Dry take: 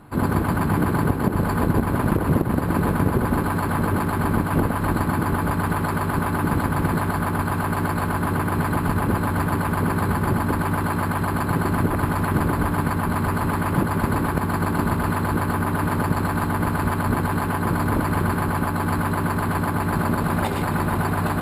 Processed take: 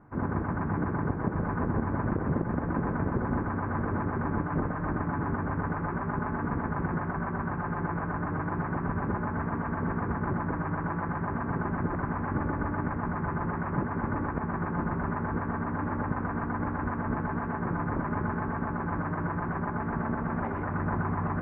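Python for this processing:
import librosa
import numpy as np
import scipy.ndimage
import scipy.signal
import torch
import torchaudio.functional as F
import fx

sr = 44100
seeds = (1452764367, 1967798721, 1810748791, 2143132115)

p1 = scipy.signal.sosfilt(scipy.signal.butter(6, 2000.0, 'lowpass', fs=sr, output='sos'), x)
p2 = p1 + fx.echo_single(p1, sr, ms=998, db=-7.5, dry=0)
y = F.gain(torch.from_numpy(p2), -9.0).numpy()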